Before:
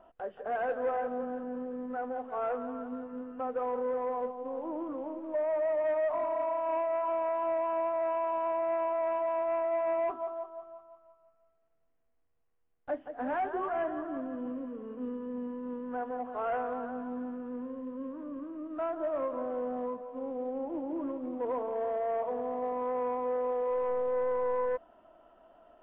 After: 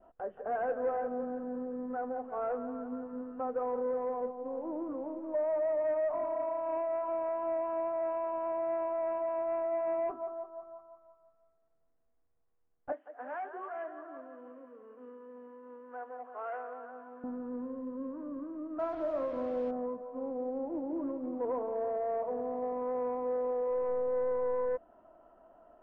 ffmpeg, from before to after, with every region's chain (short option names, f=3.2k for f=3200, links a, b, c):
-filter_complex "[0:a]asettb=1/sr,asplit=3[a][b][c];[a]atrim=end=12.924[d];[b]atrim=start=12.92:end=17.24,asetpts=PTS-STARTPTS,afade=t=in:d=0.004:c=qsin,afade=t=out:st=4.316:d=0.004:c=qsin,highpass=670,equalizer=f=860:w=1.5:g=-5[e];[c]atrim=start=17.236[f];[d][e]acrossfade=d=0.004:c1=hsin:c2=qsin[g];[g][f]acrossfade=d=0.004:c1=qsin:c2=hsin,asettb=1/sr,asplit=3[h][i][j];[h]atrim=end=18.794[k];[i]atrim=start=18.79:end=19.71,asetpts=PTS-STARTPTS,afade=t=in:d=0.004:c=qsin,afade=t=out:st=0.916:d=0.004:c=qsin,acrusher=bits=6:mix=0:aa=0.5,asplit=2[l][m];[m]adelay=40,volume=-10.5dB[n];[l][n]amix=inputs=2:normalize=0,atrim=end_sample=40572[o];[j]atrim=start=19.706[p];[k][o]acrossfade=d=0.004:c1=hsin:c2=qsin[q];[q][p]acrossfade=d=0.004:c1=qsin:c2=hsin,lowpass=1.5k,adynamicequalizer=threshold=0.00501:dfrequency=1000:dqfactor=1.5:tfrequency=1000:tqfactor=1.5:attack=5:release=100:ratio=0.375:range=2.5:mode=cutabove:tftype=bell"